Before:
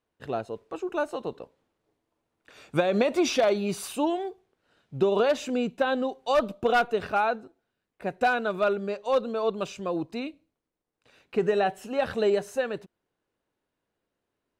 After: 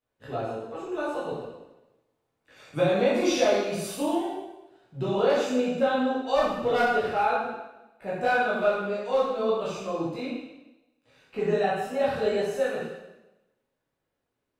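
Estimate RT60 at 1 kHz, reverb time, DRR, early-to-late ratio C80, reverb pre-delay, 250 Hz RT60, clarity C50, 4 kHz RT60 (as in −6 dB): 0.95 s, 1.0 s, −9.0 dB, 3.0 dB, 5 ms, 1.0 s, 0.0 dB, 0.95 s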